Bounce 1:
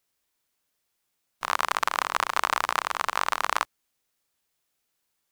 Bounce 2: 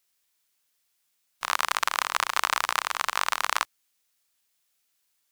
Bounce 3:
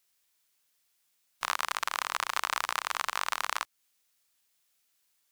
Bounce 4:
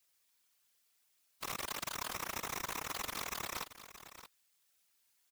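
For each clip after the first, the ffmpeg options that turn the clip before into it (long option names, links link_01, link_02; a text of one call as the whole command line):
ffmpeg -i in.wav -af "tiltshelf=frequency=1200:gain=-5.5,volume=-1dB" out.wav
ffmpeg -i in.wav -af "alimiter=limit=-8.5dB:level=0:latency=1:release=230" out.wav
ffmpeg -i in.wav -af "aeval=exprs='(mod(15.8*val(0)+1,2)-1)/15.8':channel_layout=same,afftfilt=real='hypot(re,im)*cos(2*PI*random(0))':imag='hypot(re,im)*sin(2*PI*random(1))':win_size=512:overlap=0.75,aecho=1:1:625:0.224,volume=4.5dB" out.wav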